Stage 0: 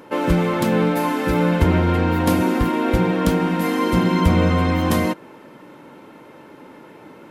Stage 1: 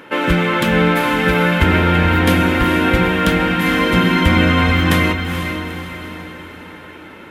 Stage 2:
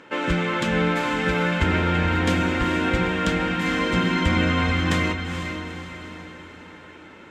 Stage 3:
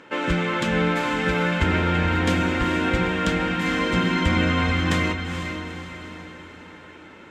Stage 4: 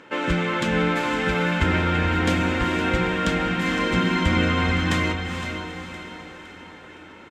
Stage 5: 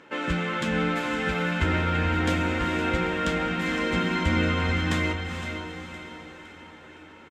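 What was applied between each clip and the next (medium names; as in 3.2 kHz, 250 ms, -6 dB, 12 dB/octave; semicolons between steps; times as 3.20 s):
high-order bell 2.2 kHz +9 dB; echo that smears into a reverb 454 ms, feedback 49%, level -7 dB; trim +1.5 dB
FFT filter 3.2 kHz 0 dB, 7.5 kHz +5 dB, 11 kHz -14 dB; trim -7.5 dB
no audible change
feedback delay 513 ms, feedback 46%, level -13 dB
doubling 13 ms -8 dB; trim -4.5 dB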